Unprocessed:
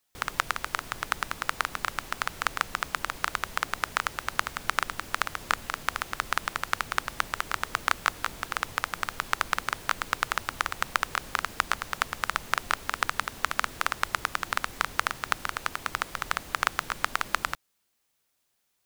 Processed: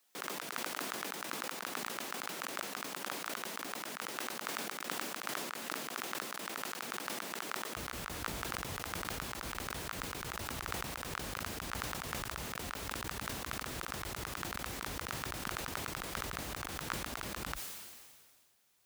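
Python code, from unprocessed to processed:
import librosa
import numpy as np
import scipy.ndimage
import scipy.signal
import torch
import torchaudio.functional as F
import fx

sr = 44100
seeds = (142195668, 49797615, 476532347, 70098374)

y = fx.over_compress(x, sr, threshold_db=-37.0, ratio=-1.0)
y = fx.highpass(y, sr, hz=fx.steps((0.0, 210.0), (7.75, 40.0)), slope=24)
y = fx.sustainer(y, sr, db_per_s=32.0)
y = y * 10.0 ** (-3.5 / 20.0)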